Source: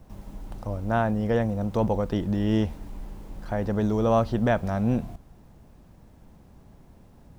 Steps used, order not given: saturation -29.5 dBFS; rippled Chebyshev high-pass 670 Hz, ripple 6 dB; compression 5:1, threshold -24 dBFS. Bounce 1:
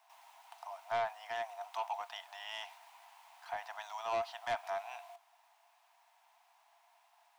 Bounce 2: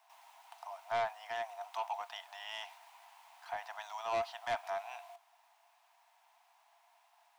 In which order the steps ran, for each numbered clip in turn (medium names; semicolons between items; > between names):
rippled Chebyshev high-pass > compression > saturation; rippled Chebyshev high-pass > saturation > compression